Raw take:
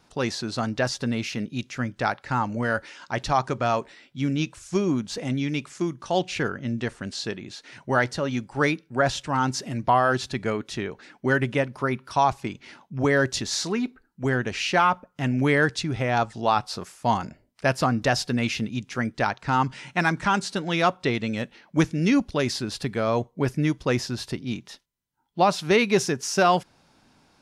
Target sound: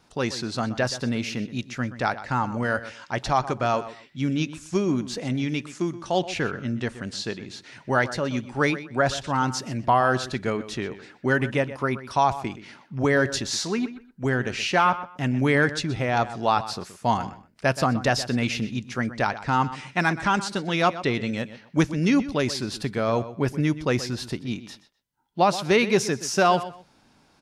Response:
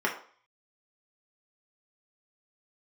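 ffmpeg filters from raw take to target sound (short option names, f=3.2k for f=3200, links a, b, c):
-filter_complex "[0:a]asplit=2[a][b];[b]adelay=125,lowpass=f=4.7k:p=1,volume=-14dB,asplit=2[c][d];[d]adelay=125,lowpass=f=4.7k:p=1,volume=0.22[e];[a][c][e]amix=inputs=3:normalize=0"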